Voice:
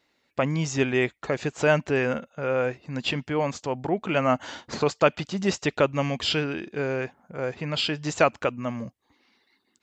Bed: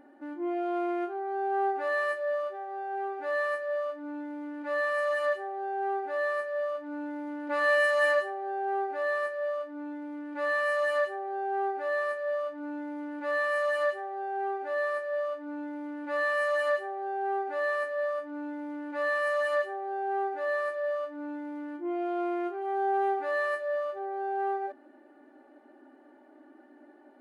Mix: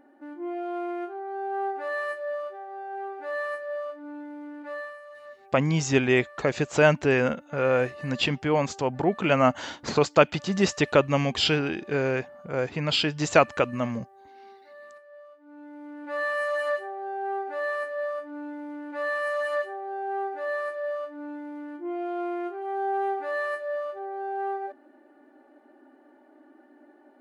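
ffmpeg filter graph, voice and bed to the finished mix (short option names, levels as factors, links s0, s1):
-filter_complex "[0:a]adelay=5150,volume=1.26[s0];[1:a]volume=6.31,afade=t=out:st=4.56:d=0.43:silence=0.158489,afade=t=in:st=15.37:d=0.86:silence=0.133352[s1];[s0][s1]amix=inputs=2:normalize=0"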